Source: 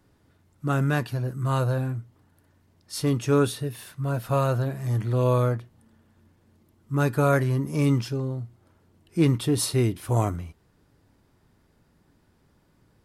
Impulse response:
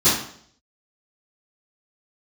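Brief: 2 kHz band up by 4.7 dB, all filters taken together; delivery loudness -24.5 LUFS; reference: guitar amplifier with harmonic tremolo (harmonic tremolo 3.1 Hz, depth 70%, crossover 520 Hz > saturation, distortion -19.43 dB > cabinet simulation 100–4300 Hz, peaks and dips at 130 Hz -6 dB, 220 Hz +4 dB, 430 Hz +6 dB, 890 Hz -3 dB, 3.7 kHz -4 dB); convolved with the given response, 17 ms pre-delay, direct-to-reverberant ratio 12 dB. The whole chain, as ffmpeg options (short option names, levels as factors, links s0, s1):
-filter_complex "[0:a]equalizer=f=2000:t=o:g=7,asplit=2[s0][s1];[1:a]atrim=start_sample=2205,adelay=17[s2];[s1][s2]afir=irnorm=-1:irlink=0,volume=0.0282[s3];[s0][s3]amix=inputs=2:normalize=0,acrossover=split=520[s4][s5];[s4]aeval=exprs='val(0)*(1-0.7/2+0.7/2*cos(2*PI*3.1*n/s))':c=same[s6];[s5]aeval=exprs='val(0)*(1-0.7/2-0.7/2*cos(2*PI*3.1*n/s))':c=same[s7];[s6][s7]amix=inputs=2:normalize=0,asoftclip=threshold=0.141,highpass=100,equalizer=f=130:t=q:w=4:g=-6,equalizer=f=220:t=q:w=4:g=4,equalizer=f=430:t=q:w=4:g=6,equalizer=f=890:t=q:w=4:g=-3,equalizer=f=3700:t=q:w=4:g=-4,lowpass=f=4300:w=0.5412,lowpass=f=4300:w=1.3066,volume=1.88"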